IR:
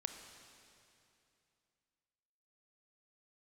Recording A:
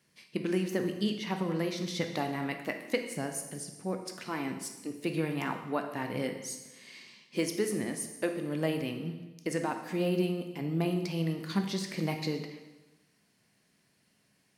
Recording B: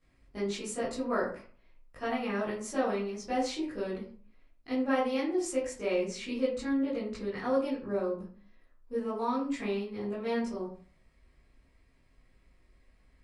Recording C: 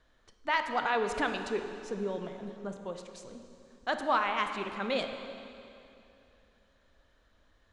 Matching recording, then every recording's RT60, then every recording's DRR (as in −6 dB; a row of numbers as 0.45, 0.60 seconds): C; 1.1, 0.45, 2.7 seconds; 4.5, −12.0, 6.0 decibels